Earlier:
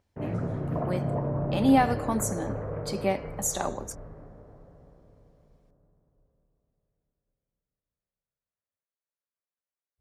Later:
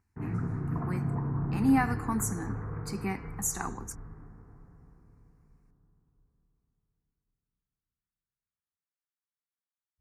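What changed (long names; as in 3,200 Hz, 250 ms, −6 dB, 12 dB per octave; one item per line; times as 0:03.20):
speech: add parametric band 2,700 Hz +2.5 dB 0.81 octaves
master: add phaser with its sweep stopped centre 1,400 Hz, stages 4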